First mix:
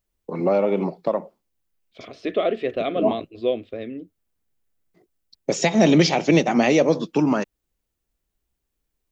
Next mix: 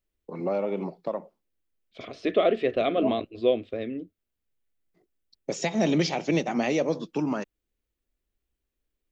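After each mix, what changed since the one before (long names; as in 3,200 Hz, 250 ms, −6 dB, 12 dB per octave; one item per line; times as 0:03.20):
first voice −8.0 dB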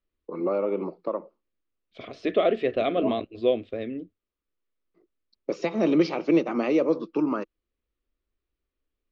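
first voice: add loudspeaker in its box 210–4,600 Hz, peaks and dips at 330 Hz +7 dB, 490 Hz +4 dB, 750 Hz −6 dB, 1,200 Hz +9 dB, 1,800 Hz −6 dB, 3,400 Hz −8 dB
master: add high-shelf EQ 9,800 Hz −12 dB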